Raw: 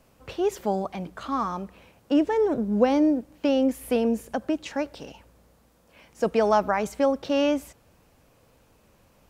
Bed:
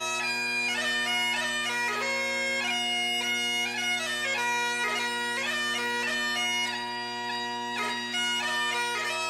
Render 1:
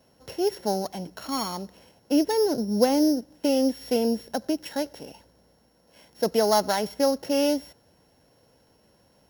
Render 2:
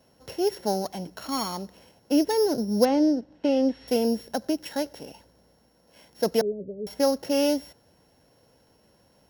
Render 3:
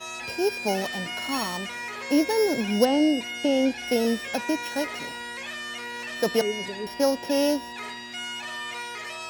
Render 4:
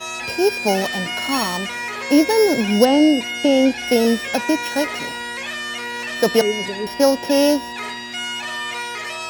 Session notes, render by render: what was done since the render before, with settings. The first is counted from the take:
sorted samples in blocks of 8 samples; comb of notches 1.2 kHz
2.85–3.88 s: low-pass 3.5 kHz; 6.41–6.87 s: rippled Chebyshev low-pass 570 Hz, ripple 9 dB
add bed -6 dB
trim +7.5 dB; peak limiter -2 dBFS, peak gain reduction 1.5 dB

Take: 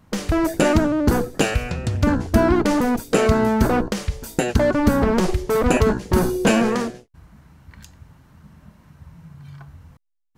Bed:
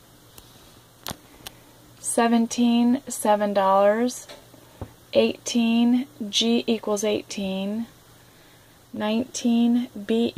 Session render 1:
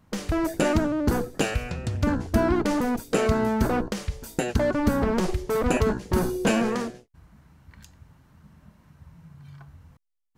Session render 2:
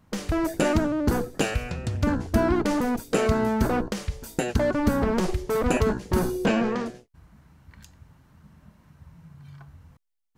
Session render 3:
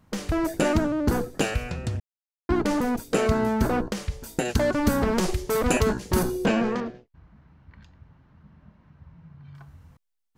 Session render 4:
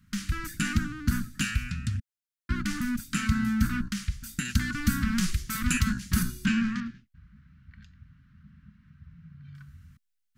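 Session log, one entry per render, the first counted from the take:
trim -5.5 dB
6.46–6.86 s: distance through air 120 m
2.00–2.49 s: mute; 4.45–6.23 s: treble shelf 2.9 kHz +7.5 dB; 6.80–9.55 s: distance through air 230 m
Chebyshev band-stop 230–1400 Hz, order 3

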